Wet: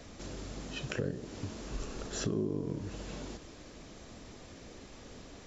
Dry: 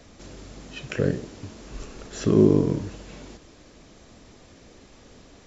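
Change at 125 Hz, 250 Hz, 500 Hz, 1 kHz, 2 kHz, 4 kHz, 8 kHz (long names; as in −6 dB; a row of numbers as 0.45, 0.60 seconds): −11.5 dB, −14.0 dB, −14.0 dB, −6.5 dB, −5.0 dB, −2.5 dB, can't be measured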